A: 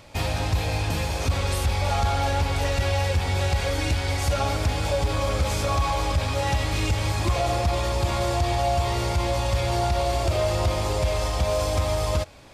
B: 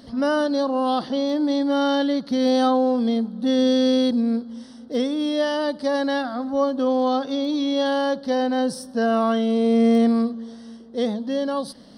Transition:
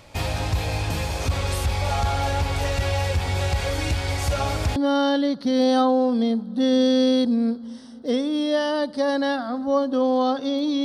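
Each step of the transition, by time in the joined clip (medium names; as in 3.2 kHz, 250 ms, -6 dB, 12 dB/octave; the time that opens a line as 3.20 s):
A
4.76 s: go over to B from 1.62 s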